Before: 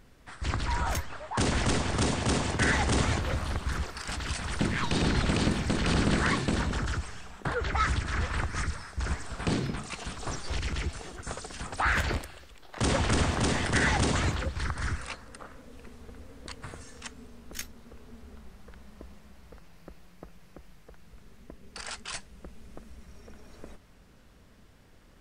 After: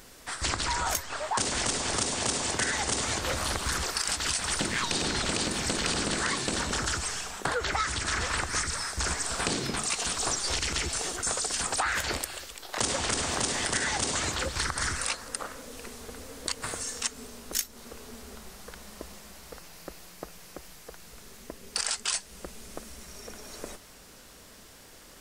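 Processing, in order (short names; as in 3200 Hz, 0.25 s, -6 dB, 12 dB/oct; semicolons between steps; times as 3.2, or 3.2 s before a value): tone controls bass -10 dB, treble +11 dB; compressor 10:1, threshold -34 dBFS, peak gain reduction 15 dB; gain +8.5 dB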